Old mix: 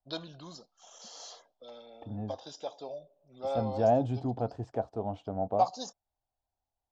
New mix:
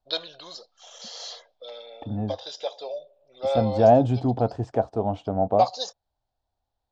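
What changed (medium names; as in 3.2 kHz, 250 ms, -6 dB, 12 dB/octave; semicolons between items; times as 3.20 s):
first voice: add graphic EQ 125/250/500/2000/4000 Hz -11/-10/+11/+10/+11 dB; second voice +9.0 dB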